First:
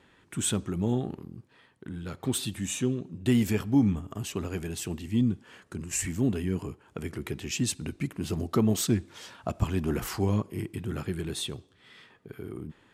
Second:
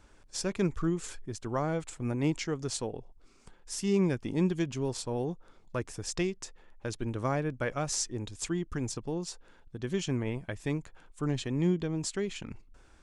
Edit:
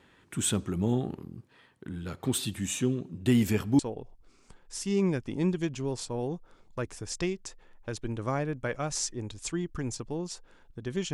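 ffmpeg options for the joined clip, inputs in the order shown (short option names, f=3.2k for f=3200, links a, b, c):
-filter_complex "[0:a]apad=whole_dur=11.13,atrim=end=11.13,atrim=end=3.792[a];[1:a]atrim=start=2.758:end=10.1[b];[a][b]acrossfade=d=0.004:c1=hsin:c2=hsin"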